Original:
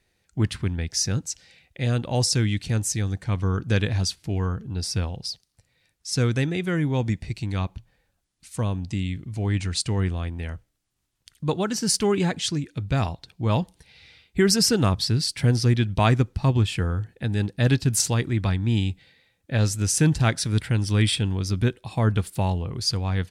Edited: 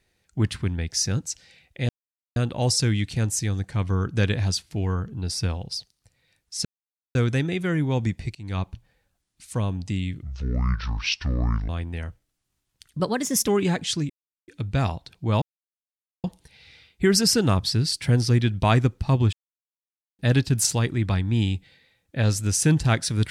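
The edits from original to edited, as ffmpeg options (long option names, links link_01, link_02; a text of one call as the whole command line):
ffmpeg -i in.wav -filter_complex "[0:a]asplit=12[link_01][link_02][link_03][link_04][link_05][link_06][link_07][link_08][link_09][link_10][link_11][link_12];[link_01]atrim=end=1.89,asetpts=PTS-STARTPTS,afade=type=out:start_time=1.886:duration=0.004:curve=hsin,apad=pad_dur=0.47[link_13];[link_02]atrim=start=1.89:end=6.18,asetpts=PTS-STARTPTS,afade=type=in:duration=0.004:curve=hsin,afade=type=out:start_time=4.286:duration=0.004:curve=hsin,apad=pad_dur=0.5[link_14];[link_03]atrim=start=6.18:end=7.38,asetpts=PTS-STARTPTS,afade=type=in:duration=0.004:curve=hsin,afade=type=out:start_time=1.196:duration=0.004:curve=hsin:silence=0.0707946[link_15];[link_04]atrim=start=7.38:end=9.264,asetpts=PTS-STARTPTS,afade=type=in:duration=0.25:silence=0.0707946[link_16];[link_05]atrim=start=9.26:end=10.15,asetpts=PTS-STARTPTS,asetrate=26901,aresample=44100[link_17];[link_06]atrim=start=10.146:end=11.464[link_18];[link_07]atrim=start=11.46:end=12.03,asetpts=PTS-STARTPTS,asetrate=52479,aresample=44100[link_19];[link_08]atrim=start=12.026:end=12.65,asetpts=PTS-STARTPTS,afade=type=out:start_time=0.62:duration=0.004:curve=hsin,apad=pad_dur=0.38[link_20];[link_09]atrim=start=12.65:end=13.59,asetpts=PTS-STARTPTS,afade=type=in:duration=0.004:curve=hsin,afade=type=out:start_time=0.936:duration=0.004:curve=hsin,apad=pad_dur=0.82[link_21];[link_10]atrim=start=13.59:end=16.68,asetpts=PTS-STARTPTS,afade=type=in:duration=0.004:curve=hsin,afade=type=out:start_time=3.086:duration=0.004:curve=hsin[link_22];[link_11]atrim=start=16.68:end=17.54,asetpts=PTS-STARTPTS,volume=0[link_23];[link_12]atrim=start=17.54,asetpts=PTS-STARTPTS,afade=type=in:duration=0.004:curve=hsin[link_24];[link_13][link_14][link_15][link_16]concat=n=4:v=0:a=1[link_25];[link_25][link_17]acrossfade=duration=0.004:curve1=hsin:curve2=hsin[link_26];[link_26][link_18]acrossfade=duration=0.004:curve1=hsin:curve2=hsin[link_27];[link_27][link_19]acrossfade=duration=0.004:curve1=hsin:curve2=hsin[link_28];[link_20][link_21][link_22][link_23][link_24]concat=n=5:v=0:a=1[link_29];[link_28][link_29]acrossfade=duration=0.004:curve1=hsin:curve2=hsin" out.wav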